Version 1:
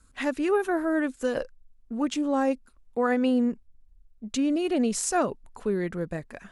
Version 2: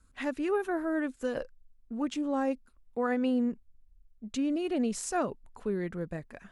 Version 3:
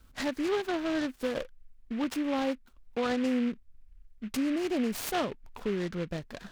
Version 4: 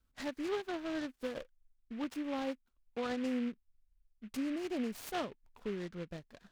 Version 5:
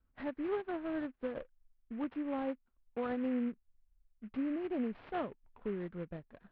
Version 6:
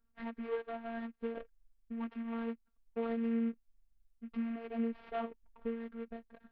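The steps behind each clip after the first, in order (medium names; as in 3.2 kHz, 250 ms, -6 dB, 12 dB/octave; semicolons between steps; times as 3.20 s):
tone controls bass +2 dB, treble -3 dB; trim -5.5 dB
compression 1.5:1, threshold -43 dBFS, peak gain reduction 7 dB; delay time shaken by noise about 1.9 kHz, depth 0.068 ms; trim +6 dB
upward expansion 1.5:1, over -51 dBFS; trim -6 dB
Gaussian low-pass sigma 3.6 samples; trim +1 dB
robot voice 230 Hz; trim +1.5 dB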